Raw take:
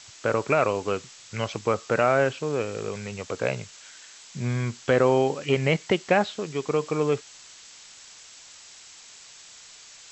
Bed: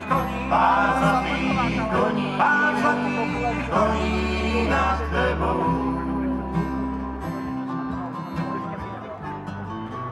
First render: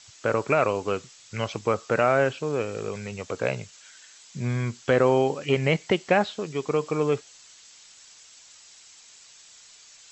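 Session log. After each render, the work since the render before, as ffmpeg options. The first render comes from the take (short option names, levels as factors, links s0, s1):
-af "afftdn=nr=6:nf=-48"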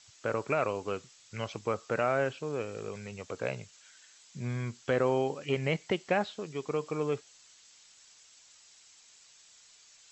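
-af "volume=0.422"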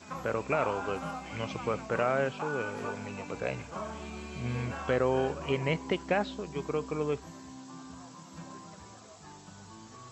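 -filter_complex "[1:a]volume=0.119[s0];[0:a][s0]amix=inputs=2:normalize=0"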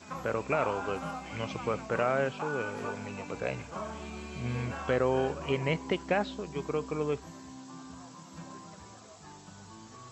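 -af anull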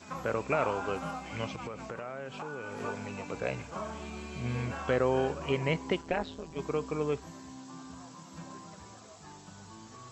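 -filter_complex "[0:a]asettb=1/sr,asplit=3[s0][s1][s2];[s0]atrim=end=1.484[s3];[s1]atrim=start=1.48:end=2.8,asetpts=PTS-STARTPTS,afade=t=in:d=0.004:c=qsin,afade=t=out:st=1.316:d=0.004:c=qsin,acompressor=threshold=0.0178:ratio=8:attack=3.2:release=140:knee=1:detection=peak[s4];[s2]atrim=start=2.796[s5];[s3][s4]acrossfade=d=0.004:c1=hsin:c2=qsin[s6];[s6][s5]acrossfade=d=0.004:c1=qsin:c2=hsin,asettb=1/sr,asplit=3[s7][s8][s9];[s7]atrim=end=6.014[s10];[s8]atrim=start=6.01:end=6.59,asetpts=PTS-STARTPTS,afade=t=in:d=0.004:c=qsin,afade=t=out:st=0.576:d=0.004:c=qsin,tremolo=f=160:d=0.857[s11];[s9]atrim=start=6.586[s12];[s10][s11]acrossfade=d=0.004:c1=hsin:c2=qsin[s13];[s13][s12]acrossfade=d=0.004:c1=qsin:c2=hsin"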